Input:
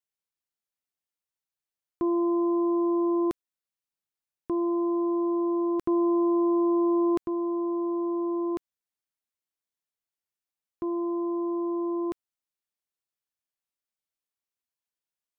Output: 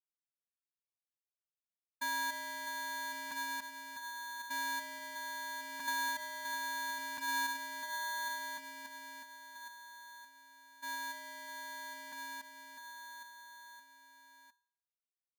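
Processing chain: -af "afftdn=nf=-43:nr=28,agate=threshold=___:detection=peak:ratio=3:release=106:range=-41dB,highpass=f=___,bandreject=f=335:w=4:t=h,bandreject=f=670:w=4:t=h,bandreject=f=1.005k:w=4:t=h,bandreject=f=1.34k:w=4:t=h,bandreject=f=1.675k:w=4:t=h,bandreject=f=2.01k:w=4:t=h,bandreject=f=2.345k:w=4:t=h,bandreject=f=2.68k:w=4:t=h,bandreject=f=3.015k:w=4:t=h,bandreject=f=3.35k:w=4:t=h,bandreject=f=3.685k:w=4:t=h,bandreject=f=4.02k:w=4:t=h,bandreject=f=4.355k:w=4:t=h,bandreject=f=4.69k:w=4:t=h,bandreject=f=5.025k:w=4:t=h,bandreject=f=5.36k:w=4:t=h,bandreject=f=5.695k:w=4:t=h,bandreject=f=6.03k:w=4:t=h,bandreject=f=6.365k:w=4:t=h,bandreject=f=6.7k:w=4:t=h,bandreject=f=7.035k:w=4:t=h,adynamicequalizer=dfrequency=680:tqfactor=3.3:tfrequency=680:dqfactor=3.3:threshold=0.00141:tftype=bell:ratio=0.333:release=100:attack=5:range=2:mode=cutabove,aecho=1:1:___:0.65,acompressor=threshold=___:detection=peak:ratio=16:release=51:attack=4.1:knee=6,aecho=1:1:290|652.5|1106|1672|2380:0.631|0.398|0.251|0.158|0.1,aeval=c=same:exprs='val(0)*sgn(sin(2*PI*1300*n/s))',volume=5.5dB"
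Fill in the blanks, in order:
-17dB, 130, 5.6, -39dB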